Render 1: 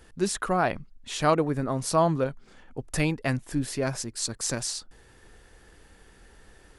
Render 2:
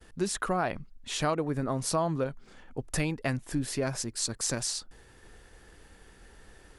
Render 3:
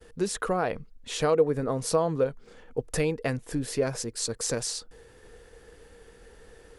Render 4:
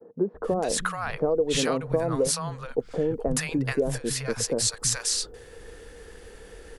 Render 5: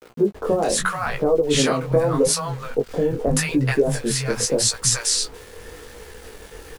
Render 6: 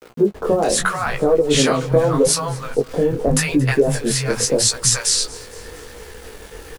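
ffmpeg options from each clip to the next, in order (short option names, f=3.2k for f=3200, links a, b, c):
-af "agate=range=-33dB:threshold=-53dB:ratio=3:detection=peak,acompressor=threshold=-26dB:ratio=3"
-af "equalizer=f=470:w=5.4:g=14.5"
-filter_complex "[0:a]acompressor=threshold=-26dB:ratio=6,acrossover=split=160|870[a][b][c];[a]adelay=330[d];[c]adelay=430[e];[d][b][e]amix=inputs=3:normalize=0,volume=7dB"
-filter_complex "[0:a]aeval=exprs='val(0)*gte(abs(val(0)),0.00562)':c=same,flanger=delay=16:depth=8:speed=0.82,asplit=2[a][b];[b]adelay=14,volume=-10dB[c];[a][c]amix=inputs=2:normalize=0,volume=8.5dB"
-af "aecho=1:1:227|454|681|908:0.0841|0.0446|0.0236|0.0125,volume=3dB"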